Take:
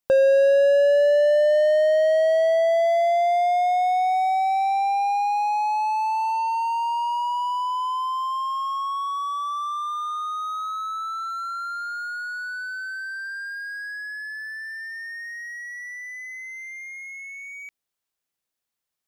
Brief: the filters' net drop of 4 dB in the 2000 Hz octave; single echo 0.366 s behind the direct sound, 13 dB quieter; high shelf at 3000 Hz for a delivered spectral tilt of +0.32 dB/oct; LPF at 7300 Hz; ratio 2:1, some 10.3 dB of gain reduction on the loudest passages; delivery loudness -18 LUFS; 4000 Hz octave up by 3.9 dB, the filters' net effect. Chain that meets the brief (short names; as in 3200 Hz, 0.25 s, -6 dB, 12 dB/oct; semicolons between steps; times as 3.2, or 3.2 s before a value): LPF 7300 Hz; bell 2000 Hz -7.5 dB; high shelf 3000 Hz +3.5 dB; bell 4000 Hz +5.5 dB; compressor 2:1, threshold -35 dBFS; echo 0.366 s -13 dB; gain +13.5 dB